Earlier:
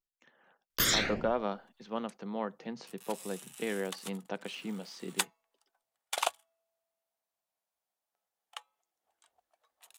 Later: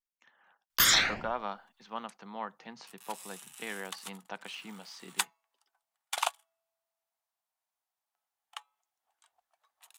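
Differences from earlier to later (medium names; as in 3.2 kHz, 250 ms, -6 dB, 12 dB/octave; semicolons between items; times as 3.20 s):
first sound +4.5 dB; master: add resonant low shelf 660 Hz -8 dB, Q 1.5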